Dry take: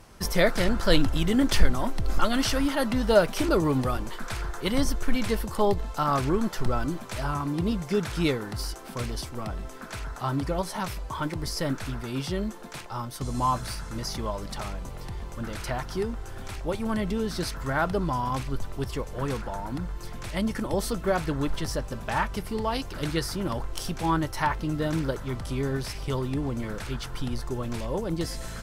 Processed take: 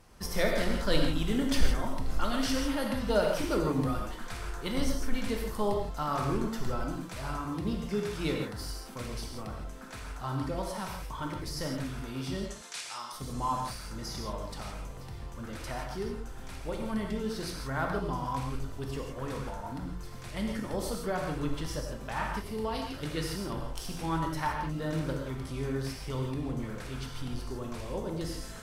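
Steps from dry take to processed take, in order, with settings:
0:12.44–0:13.12: meter weighting curve ITU-R 468
convolution reverb, pre-delay 3 ms, DRR 1 dB
level −8 dB

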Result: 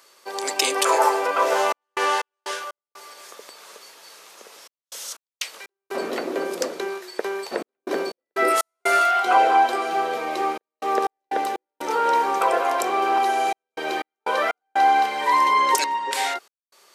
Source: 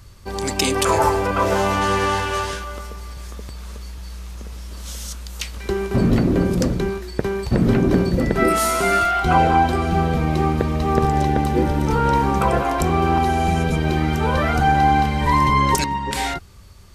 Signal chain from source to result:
high-pass filter 420 Hz 24 dB per octave
gate pattern "xxxxxxx.x.x." 61 BPM −60 dB

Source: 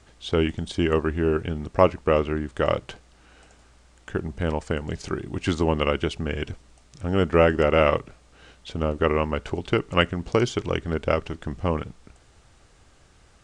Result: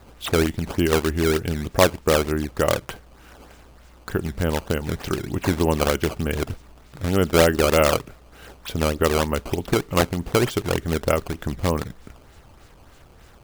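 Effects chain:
in parallel at +1 dB: downward compressor, threshold −32 dBFS, peak gain reduction 19.5 dB
on the sum: sample-and-hold swept by an LFO 14×, swing 160% 3.3 Hz

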